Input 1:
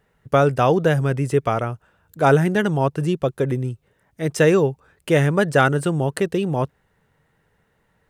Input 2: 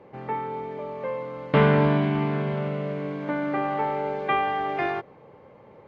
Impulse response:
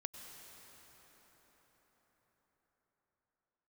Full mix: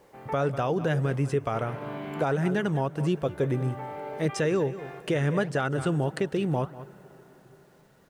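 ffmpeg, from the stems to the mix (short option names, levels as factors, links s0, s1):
-filter_complex "[0:a]acrossover=split=8300[s0][s1];[s1]acompressor=threshold=0.00158:ratio=4:attack=1:release=60[s2];[s0][s2]amix=inputs=2:normalize=0,volume=1.19,asplit=4[s3][s4][s5][s6];[s4]volume=0.141[s7];[s5]volume=0.141[s8];[1:a]lowshelf=f=200:g=-11.5,volume=0.891,asplit=2[s9][s10];[s10]volume=0.0668[s11];[s6]apad=whole_len=259049[s12];[s9][s12]sidechaincompress=threshold=0.0501:ratio=8:attack=16:release=712[s13];[2:a]atrim=start_sample=2205[s14];[s7][s14]afir=irnorm=-1:irlink=0[s15];[s8][s11]amix=inputs=2:normalize=0,aecho=0:1:194:1[s16];[s3][s13][s15][s16]amix=inputs=4:normalize=0,flanger=delay=0.2:depth=7.6:regen=-85:speed=1.6:shape=sinusoidal,acrusher=bits=10:mix=0:aa=0.000001,alimiter=limit=0.141:level=0:latency=1:release=264"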